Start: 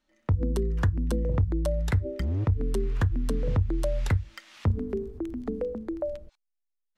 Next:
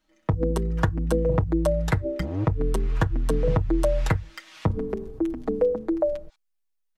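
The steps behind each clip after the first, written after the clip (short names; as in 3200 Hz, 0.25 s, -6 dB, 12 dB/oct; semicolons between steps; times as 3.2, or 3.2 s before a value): dynamic EQ 780 Hz, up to +6 dB, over -46 dBFS, Q 0.75; comb 6.3 ms, depth 69%; gain +2 dB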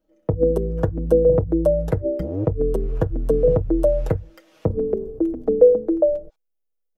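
graphic EQ 500/1000/2000/4000/8000 Hz +12/-8/-10/-10/-9 dB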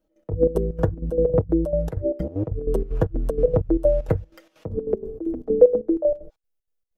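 step gate "x.x.xx.xx.xx.x." 191 bpm -12 dB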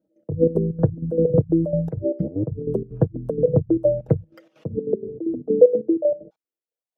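formant sharpening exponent 1.5; high-pass sweep 140 Hz -> 800 Hz, 6.12–6.97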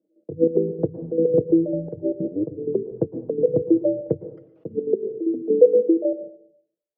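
band-pass 370 Hz, Q 2.1; on a send at -12 dB: reverb RT60 0.65 s, pre-delay 0.102 s; on the sum: gain +3 dB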